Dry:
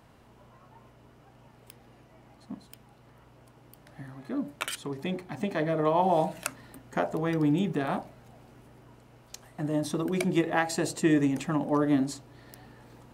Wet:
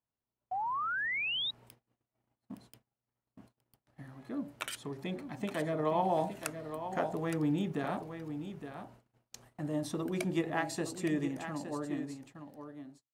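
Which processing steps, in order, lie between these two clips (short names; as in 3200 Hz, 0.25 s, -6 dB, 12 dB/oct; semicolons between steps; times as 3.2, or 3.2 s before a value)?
ending faded out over 2.98 s; on a send: echo 0.866 s -9.5 dB; on the sum: painted sound rise, 0.51–1.51, 720–3900 Hz -28 dBFS; gate -50 dBFS, range -32 dB; gain -6 dB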